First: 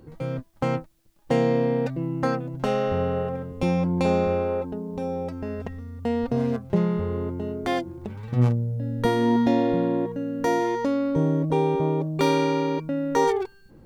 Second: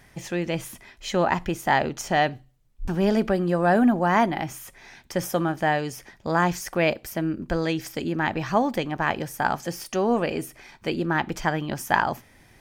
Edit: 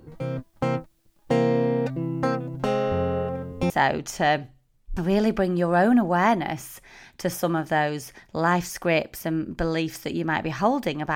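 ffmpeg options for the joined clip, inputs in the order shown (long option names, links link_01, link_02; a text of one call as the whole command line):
ffmpeg -i cue0.wav -i cue1.wav -filter_complex "[0:a]apad=whole_dur=11.15,atrim=end=11.15,atrim=end=3.702[link_01];[1:a]atrim=start=1.608:end=9.06[link_02];[link_01][link_02]acrossfade=duration=0.004:curve1=hsin:curve2=hsin" out.wav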